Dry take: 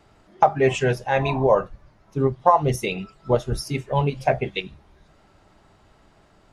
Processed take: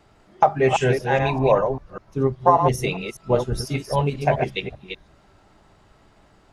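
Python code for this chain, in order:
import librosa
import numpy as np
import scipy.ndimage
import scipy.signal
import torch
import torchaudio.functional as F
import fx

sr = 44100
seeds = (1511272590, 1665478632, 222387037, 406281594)

y = fx.reverse_delay(x, sr, ms=198, wet_db=-6)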